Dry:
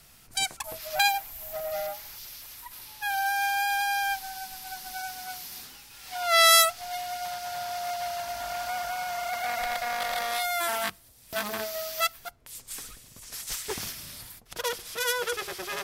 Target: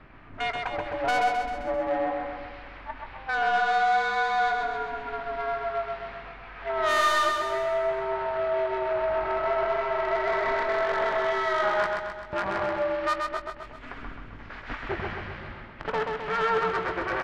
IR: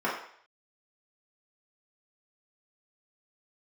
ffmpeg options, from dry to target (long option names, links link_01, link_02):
-filter_complex "[0:a]lowpass=frequency=2200:width=0.5412,lowpass=frequency=2200:width=1.3066,equalizer=frequency=250:width_type=o:width=1.1:gain=-8,asplit=2[link_01][link_02];[link_02]acompressor=threshold=-37dB:ratio=6,volume=0dB[link_03];[link_01][link_03]amix=inputs=2:normalize=0,tremolo=f=290:d=0.824,asoftclip=type=tanh:threshold=-26.5dB,asplit=2[link_04][link_05];[link_05]adelay=19,volume=-12dB[link_06];[link_04][link_06]amix=inputs=2:normalize=0,asplit=2[link_07][link_08];[link_08]aecho=0:1:120|240|360|480|600|720|840:0.631|0.347|0.191|0.105|0.0577|0.0318|0.0175[link_09];[link_07][link_09]amix=inputs=2:normalize=0,asetrate=40517,aresample=44100,volume=7dB"